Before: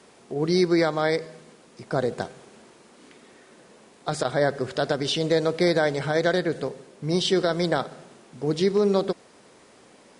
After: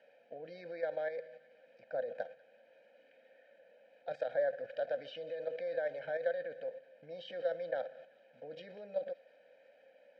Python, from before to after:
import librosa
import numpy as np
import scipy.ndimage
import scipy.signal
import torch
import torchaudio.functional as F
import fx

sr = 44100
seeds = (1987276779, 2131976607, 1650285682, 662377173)

p1 = fx.low_shelf(x, sr, hz=240.0, db=-10.5)
p2 = fx.over_compress(p1, sr, threshold_db=-28.0, ratio=-0.5)
p3 = p1 + F.gain(torch.from_numpy(p2), 0.0).numpy()
p4 = scipy.signal.sosfilt(scipy.signal.butter(2, 4400.0, 'lowpass', fs=sr, output='sos'), p3)
p5 = fx.high_shelf(p4, sr, hz=2100.0, db=-6.5)
p6 = p5 + 0.97 * np.pad(p5, (int(1.3 * sr / 1000.0), 0))[:len(p5)]
p7 = fx.level_steps(p6, sr, step_db=10)
p8 = fx.vowel_filter(p7, sr, vowel='e')
p9 = p8 + fx.echo_wet_highpass(p8, sr, ms=191, feedback_pct=60, hz=1400.0, wet_db=-20, dry=0)
y = F.gain(torch.from_numpy(p9), -4.0).numpy()